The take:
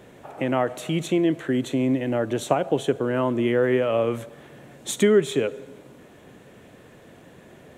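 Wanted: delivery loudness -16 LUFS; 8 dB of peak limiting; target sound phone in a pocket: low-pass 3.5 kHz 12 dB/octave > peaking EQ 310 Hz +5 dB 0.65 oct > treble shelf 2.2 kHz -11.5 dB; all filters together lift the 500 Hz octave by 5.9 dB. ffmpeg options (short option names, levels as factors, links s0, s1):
-af "equalizer=f=500:t=o:g=6,alimiter=limit=0.266:level=0:latency=1,lowpass=3500,equalizer=f=310:t=o:w=0.65:g=5,highshelf=f=2200:g=-11.5,volume=1.68"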